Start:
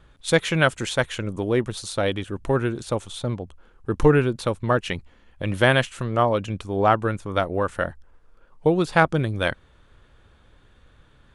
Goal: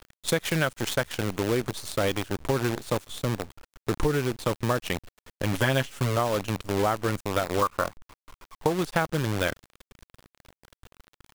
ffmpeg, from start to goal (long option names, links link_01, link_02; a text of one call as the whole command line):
ffmpeg -i in.wav -filter_complex "[0:a]asettb=1/sr,asplit=3[link_01][link_02][link_03];[link_01]atrim=end=7.624[link_04];[link_02]atrim=start=7.62:end=8.73,asetpts=PTS-STARTPTS,afade=type=in:duration=0.004:curve=qsin,afade=type=out:start_time=1.106:duration=0.004:curve=qsin,lowpass=frequency=1100:width_type=q:width=6.9[link_05];[link_03]atrim=start=8.726[link_06];[link_04][link_05]acrossfade=duration=0.004:curve1=hsin:curve2=qsin[link_07];[link_07][link_06]acrossfade=duration=0.004:curve1=qsin:curve2=hsin,acrusher=bits=5:dc=4:mix=0:aa=0.000001,acompressor=threshold=-21dB:ratio=6,asettb=1/sr,asplit=3[link_08][link_09][link_10];[link_08]atrim=end=5.534[link_11];[link_09]atrim=start=5.53:end=6.17,asetpts=PTS-STARTPTS,afade=type=in:duration=0.004:curve=qsin,afade=type=out:start_time=0.636:duration=0.004:curve=qsin,aecho=1:1:7.2:0.68,atrim=end_sample=28224[link_12];[link_10]atrim=start=6.166[link_13];[link_11][link_12]acrossfade=duration=0.004:curve1=hsin:curve2=qsin[link_14];[link_14][link_13]acrossfade=duration=0.004:curve1=qsin:curve2=hsin" out.wav